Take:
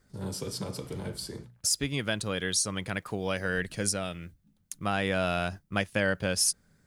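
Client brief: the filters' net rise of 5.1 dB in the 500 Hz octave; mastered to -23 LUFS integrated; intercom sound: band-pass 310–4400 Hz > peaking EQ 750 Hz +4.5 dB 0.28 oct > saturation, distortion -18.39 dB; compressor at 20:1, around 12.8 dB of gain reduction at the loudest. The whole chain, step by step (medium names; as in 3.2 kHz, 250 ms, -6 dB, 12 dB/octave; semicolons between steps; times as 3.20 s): peaking EQ 500 Hz +6 dB; compression 20:1, threshold -32 dBFS; band-pass 310–4400 Hz; peaking EQ 750 Hz +4.5 dB 0.28 oct; saturation -27.5 dBFS; trim +18 dB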